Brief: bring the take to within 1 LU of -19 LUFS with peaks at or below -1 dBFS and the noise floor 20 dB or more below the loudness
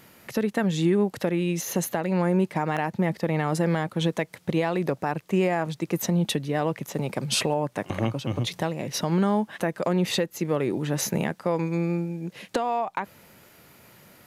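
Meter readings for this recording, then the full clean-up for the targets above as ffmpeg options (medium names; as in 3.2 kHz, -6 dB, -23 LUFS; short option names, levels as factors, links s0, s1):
loudness -26.5 LUFS; peak level -13.0 dBFS; loudness target -19.0 LUFS
-> -af "volume=2.37"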